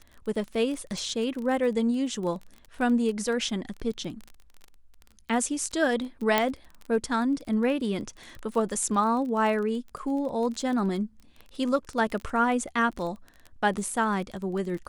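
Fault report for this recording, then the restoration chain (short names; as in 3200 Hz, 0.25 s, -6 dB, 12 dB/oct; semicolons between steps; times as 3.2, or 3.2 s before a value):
crackle 24/s -33 dBFS
6.38 pop -8 dBFS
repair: de-click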